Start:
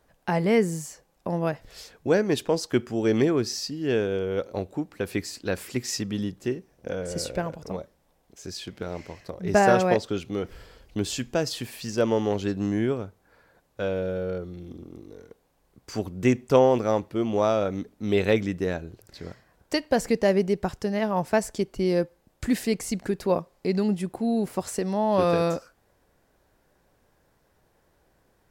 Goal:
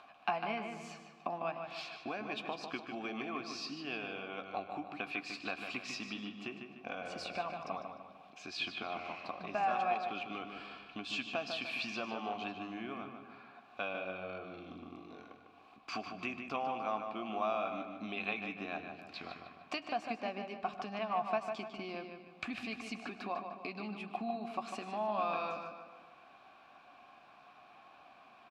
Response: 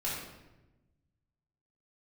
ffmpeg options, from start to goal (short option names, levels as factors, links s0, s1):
-filter_complex "[0:a]acompressor=threshold=0.02:ratio=5,equalizer=f=250:t=o:w=1:g=10,equalizer=f=500:t=o:w=1:g=-12,equalizer=f=1000:t=o:w=1:g=5,equalizer=f=2000:t=o:w=1:g=10,equalizer=f=4000:t=o:w=1:g=10,acompressor=mode=upward:threshold=0.00447:ratio=2.5,asplit=3[s0][s1][s2];[s0]bandpass=f=730:t=q:w=8,volume=1[s3];[s1]bandpass=f=1090:t=q:w=8,volume=0.501[s4];[s2]bandpass=f=2440:t=q:w=8,volume=0.355[s5];[s3][s4][s5]amix=inputs=3:normalize=0,asplit=2[s6][s7];[s7]adelay=14,volume=0.237[s8];[s6][s8]amix=inputs=2:normalize=0,asplit=2[s9][s10];[s10]adelay=150,lowpass=f=4200:p=1,volume=0.473,asplit=2[s11][s12];[s12]adelay=150,lowpass=f=4200:p=1,volume=0.47,asplit=2[s13][s14];[s14]adelay=150,lowpass=f=4200:p=1,volume=0.47,asplit=2[s15][s16];[s16]adelay=150,lowpass=f=4200:p=1,volume=0.47,asplit=2[s17][s18];[s18]adelay=150,lowpass=f=4200:p=1,volume=0.47,asplit=2[s19][s20];[s20]adelay=150,lowpass=f=4200:p=1,volume=0.47[s21];[s9][s11][s13][s15][s17][s19][s21]amix=inputs=7:normalize=0,asplit=2[s22][s23];[1:a]atrim=start_sample=2205,lowshelf=f=210:g=10,adelay=102[s24];[s23][s24]afir=irnorm=-1:irlink=0,volume=0.0944[s25];[s22][s25]amix=inputs=2:normalize=0,volume=3.16"